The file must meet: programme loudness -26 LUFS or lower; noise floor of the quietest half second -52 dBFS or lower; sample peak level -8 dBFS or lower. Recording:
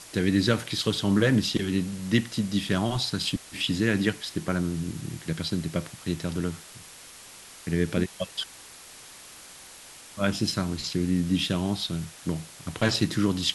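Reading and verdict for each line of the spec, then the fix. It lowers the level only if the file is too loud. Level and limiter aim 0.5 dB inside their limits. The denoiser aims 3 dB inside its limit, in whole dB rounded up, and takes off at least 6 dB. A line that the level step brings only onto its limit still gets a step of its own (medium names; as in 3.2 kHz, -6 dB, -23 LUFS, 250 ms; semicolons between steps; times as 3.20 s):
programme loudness -27.5 LUFS: pass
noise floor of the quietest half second -47 dBFS: fail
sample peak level -7.5 dBFS: fail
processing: noise reduction 8 dB, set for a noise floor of -47 dBFS; peak limiter -8.5 dBFS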